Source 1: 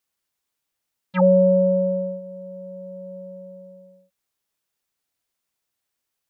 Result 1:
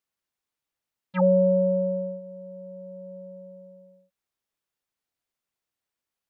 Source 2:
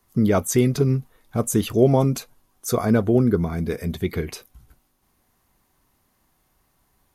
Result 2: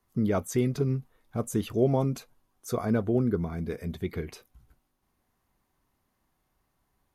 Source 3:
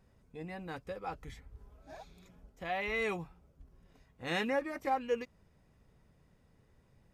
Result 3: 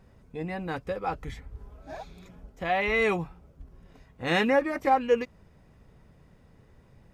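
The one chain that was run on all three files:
treble shelf 4.1 kHz -6 dB; peak normalisation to -12 dBFS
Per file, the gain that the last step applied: -4.0 dB, -7.5 dB, +10.0 dB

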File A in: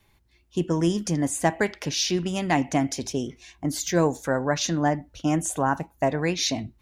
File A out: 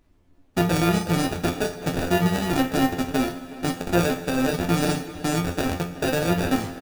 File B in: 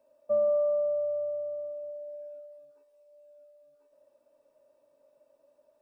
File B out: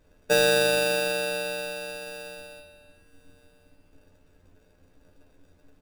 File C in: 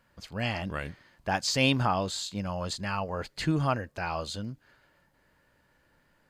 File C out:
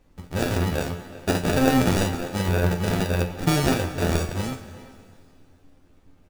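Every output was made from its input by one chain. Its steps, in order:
local Wiener filter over 25 samples; Chebyshev low-pass 10 kHz, order 6; hum notches 60/120/180 Hz; gate -55 dBFS, range -8 dB; peak limiter -21 dBFS; sample-and-hold 42×; added noise brown -66 dBFS; feedback comb 87 Hz, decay 0.24 s, harmonics all, mix 90%; plate-style reverb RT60 2.6 s, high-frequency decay 1×, DRR 12.5 dB; AM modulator 280 Hz, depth 40%; speakerphone echo 370 ms, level -15 dB; normalise loudness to -24 LUFS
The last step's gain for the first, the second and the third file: +17.0 dB, +18.5 dB, +21.5 dB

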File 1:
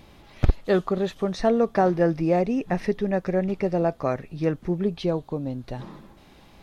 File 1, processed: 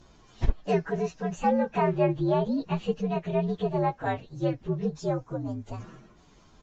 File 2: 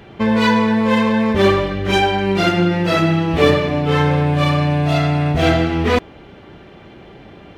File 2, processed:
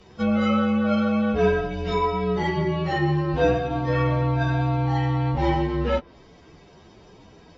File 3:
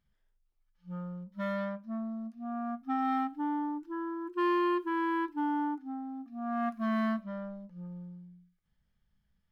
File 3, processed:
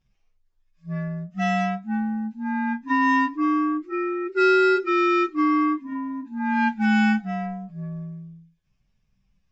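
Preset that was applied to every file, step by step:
frequency axis rescaled in octaves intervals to 120%; resampled via 16 kHz; low-pass that closes with the level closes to 2.4 kHz, closed at -15 dBFS; peak normalisation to -9 dBFS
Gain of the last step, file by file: -1.5 dB, -5.5 dB, +11.0 dB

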